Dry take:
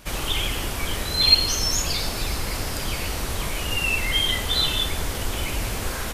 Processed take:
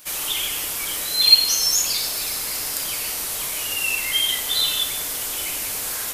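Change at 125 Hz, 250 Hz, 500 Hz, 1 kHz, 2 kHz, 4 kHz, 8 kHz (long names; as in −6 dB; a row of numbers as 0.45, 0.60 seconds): −17.5, −10.0, −6.5, −4.0, −1.0, +2.5, +7.0 decibels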